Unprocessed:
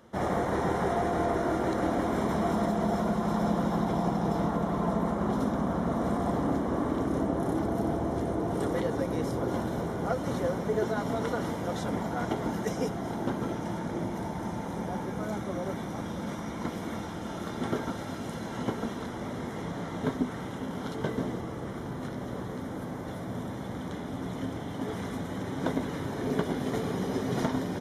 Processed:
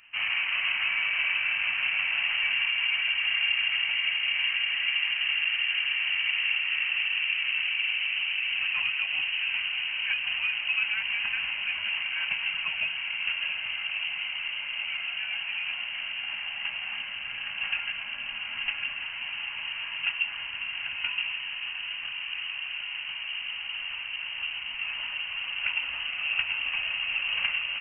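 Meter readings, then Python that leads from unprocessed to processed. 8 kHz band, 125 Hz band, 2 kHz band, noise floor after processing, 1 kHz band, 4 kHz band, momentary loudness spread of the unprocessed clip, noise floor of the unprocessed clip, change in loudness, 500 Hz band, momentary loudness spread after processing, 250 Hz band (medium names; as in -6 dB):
under -30 dB, under -25 dB, +16.5 dB, -37 dBFS, -12.0 dB, +20.0 dB, 8 LU, -37 dBFS, +4.0 dB, under -25 dB, 8 LU, under -30 dB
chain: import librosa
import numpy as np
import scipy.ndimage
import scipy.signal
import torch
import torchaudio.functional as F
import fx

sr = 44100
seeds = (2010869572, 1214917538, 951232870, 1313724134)

y = fx.echo_diffused(x, sr, ms=733, feedback_pct=75, wet_db=-13)
y = fx.freq_invert(y, sr, carrier_hz=3000)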